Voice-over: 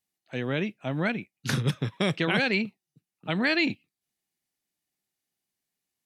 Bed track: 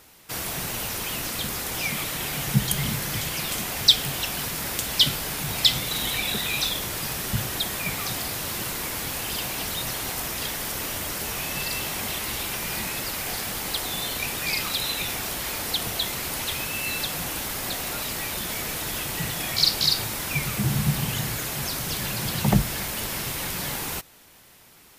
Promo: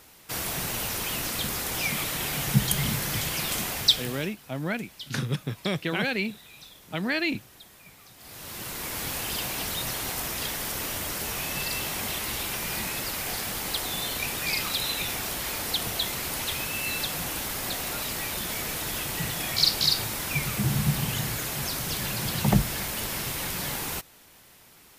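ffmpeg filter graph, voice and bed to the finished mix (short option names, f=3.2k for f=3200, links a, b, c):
-filter_complex "[0:a]adelay=3650,volume=-2.5dB[a];[1:a]volume=20.5dB,afade=t=out:st=3.65:d=0.7:silence=0.0794328,afade=t=in:st=8.17:d=0.9:silence=0.0891251[b];[a][b]amix=inputs=2:normalize=0"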